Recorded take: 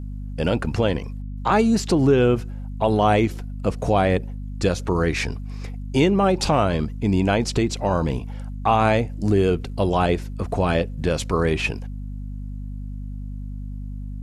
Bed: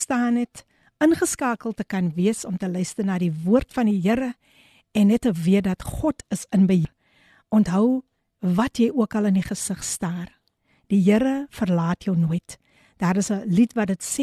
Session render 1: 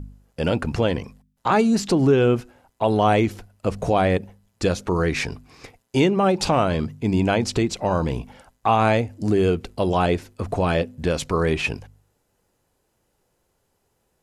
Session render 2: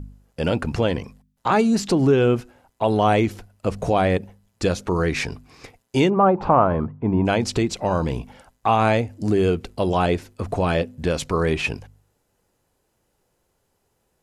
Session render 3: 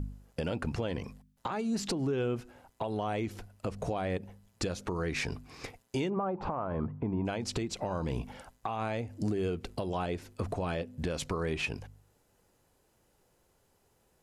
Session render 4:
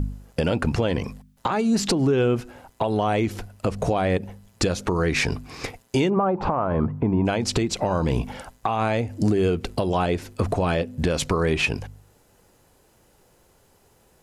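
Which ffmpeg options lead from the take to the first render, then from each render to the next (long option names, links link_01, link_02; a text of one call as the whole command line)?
ffmpeg -i in.wav -af "bandreject=frequency=50:width_type=h:width=4,bandreject=frequency=100:width_type=h:width=4,bandreject=frequency=150:width_type=h:width=4,bandreject=frequency=200:width_type=h:width=4,bandreject=frequency=250:width_type=h:width=4" out.wav
ffmpeg -i in.wav -filter_complex "[0:a]asplit=3[link_01][link_02][link_03];[link_01]afade=type=out:start_time=6.09:duration=0.02[link_04];[link_02]lowpass=frequency=1100:width_type=q:width=2.2,afade=type=in:start_time=6.09:duration=0.02,afade=type=out:start_time=7.25:duration=0.02[link_05];[link_03]afade=type=in:start_time=7.25:duration=0.02[link_06];[link_04][link_05][link_06]amix=inputs=3:normalize=0" out.wav
ffmpeg -i in.wav -af "acompressor=threshold=-25dB:ratio=6,alimiter=limit=-23dB:level=0:latency=1:release=499" out.wav
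ffmpeg -i in.wav -af "volume=11dB" out.wav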